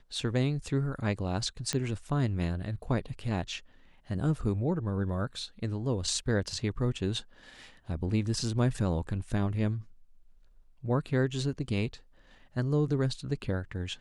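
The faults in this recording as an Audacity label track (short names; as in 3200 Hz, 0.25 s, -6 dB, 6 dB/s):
1.730000	1.730000	pop -15 dBFS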